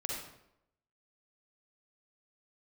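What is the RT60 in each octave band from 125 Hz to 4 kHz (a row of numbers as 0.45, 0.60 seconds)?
0.80, 0.80, 0.85, 0.75, 0.65, 0.55 seconds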